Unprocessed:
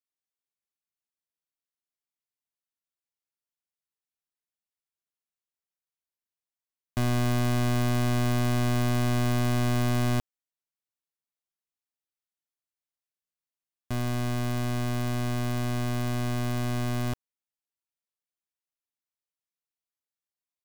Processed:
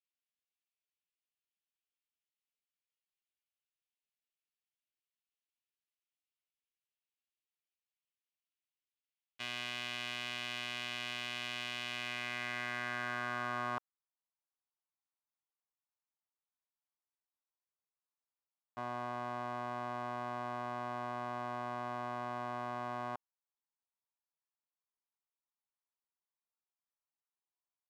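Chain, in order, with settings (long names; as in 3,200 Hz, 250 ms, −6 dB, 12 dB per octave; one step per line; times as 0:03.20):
band-pass filter sweep 2,800 Hz → 950 Hz, 0:08.78–0:10.49
tempo change 0.74×
level +2.5 dB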